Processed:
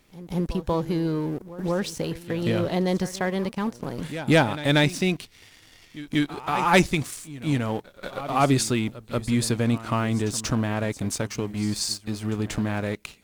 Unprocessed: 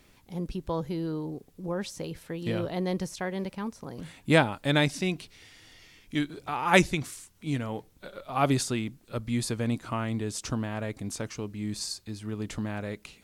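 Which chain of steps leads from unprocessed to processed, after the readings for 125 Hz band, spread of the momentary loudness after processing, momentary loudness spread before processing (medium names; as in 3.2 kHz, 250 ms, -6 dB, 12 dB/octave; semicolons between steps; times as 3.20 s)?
+5.5 dB, 11 LU, 15 LU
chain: in parallel at 0 dB: compression, threshold -37 dBFS, peak gain reduction 20.5 dB; on the sum: waveshaping leveller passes 2; pre-echo 186 ms -15 dB; trim -4 dB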